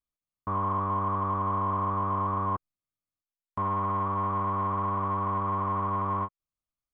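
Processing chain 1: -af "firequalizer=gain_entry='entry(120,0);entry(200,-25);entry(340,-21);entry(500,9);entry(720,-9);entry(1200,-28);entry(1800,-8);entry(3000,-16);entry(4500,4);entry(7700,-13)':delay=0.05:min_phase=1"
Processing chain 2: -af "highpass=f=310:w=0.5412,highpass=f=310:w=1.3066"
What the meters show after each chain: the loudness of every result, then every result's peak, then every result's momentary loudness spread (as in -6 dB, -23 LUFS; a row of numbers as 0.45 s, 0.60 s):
-36.5 LUFS, -30.0 LUFS; -27.0 dBFS, -21.5 dBFS; 5 LU, 5 LU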